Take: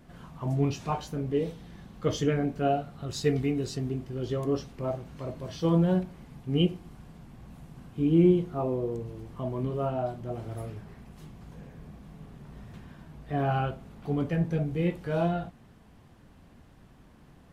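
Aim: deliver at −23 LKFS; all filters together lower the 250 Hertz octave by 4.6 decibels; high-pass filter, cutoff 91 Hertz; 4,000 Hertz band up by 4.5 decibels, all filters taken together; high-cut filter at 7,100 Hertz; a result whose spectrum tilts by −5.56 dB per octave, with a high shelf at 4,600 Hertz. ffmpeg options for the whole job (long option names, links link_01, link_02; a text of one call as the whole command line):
ffmpeg -i in.wav -af "highpass=91,lowpass=7100,equalizer=frequency=250:width_type=o:gain=-7.5,equalizer=frequency=4000:width_type=o:gain=4,highshelf=frequency=4600:gain=5.5,volume=9dB" out.wav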